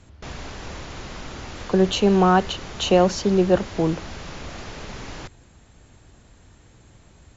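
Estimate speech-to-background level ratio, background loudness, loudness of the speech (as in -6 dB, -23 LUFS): 17.0 dB, -37.0 LUFS, -20.0 LUFS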